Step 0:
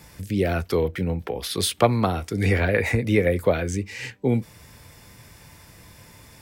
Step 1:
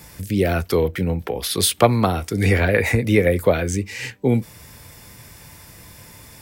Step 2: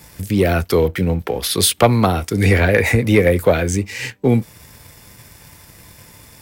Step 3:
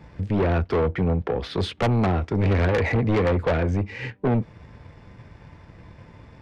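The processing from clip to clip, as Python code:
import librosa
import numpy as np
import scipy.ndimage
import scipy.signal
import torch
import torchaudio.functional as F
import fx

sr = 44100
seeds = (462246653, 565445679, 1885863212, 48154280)

y1 = fx.high_shelf(x, sr, hz=9200.0, db=7.5)
y1 = F.gain(torch.from_numpy(y1), 3.5).numpy()
y2 = fx.leveller(y1, sr, passes=1)
y3 = fx.spacing_loss(y2, sr, db_at_10k=41)
y3 = 10.0 ** (-19.0 / 20.0) * np.tanh(y3 / 10.0 ** (-19.0 / 20.0))
y3 = F.gain(torch.from_numpy(y3), 1.5).numpy()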